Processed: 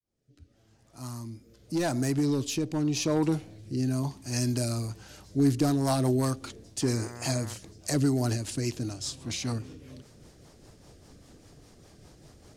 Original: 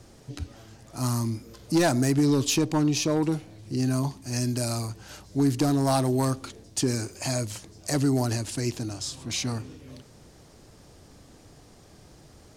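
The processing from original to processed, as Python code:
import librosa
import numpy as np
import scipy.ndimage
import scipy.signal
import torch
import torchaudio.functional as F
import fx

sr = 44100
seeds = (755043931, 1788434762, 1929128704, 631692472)

y = fx.fade_in_head(x, sr, length_s=3.44)
y = fx.rotary_switch(y, sr, hz=0.85, then_hz=5.0, switch_at_s=4.48)
y = fx.dmg_buzz(y, sr, base_hz=120.0, harmonics=17, level_db=-43.0, tilt_db=-4, odd_only=False, at=(6.81, 7.53), fade=0.02)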